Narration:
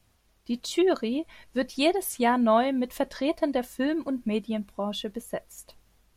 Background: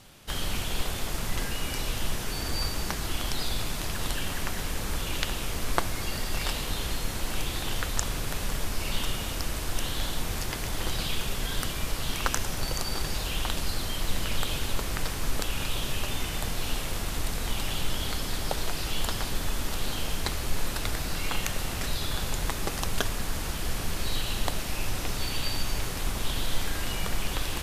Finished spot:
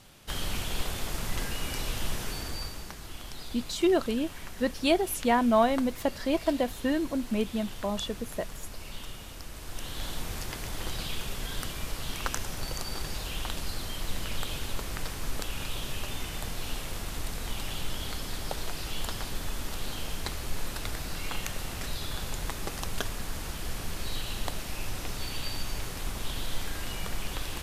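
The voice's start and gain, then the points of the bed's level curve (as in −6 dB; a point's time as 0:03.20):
3.05 s, −1.0 dB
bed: 0:02.26 −2 dB
0:02.93 −11.5 dB
0:09.50 −11.5 dB
0:10.10 −4.5 dB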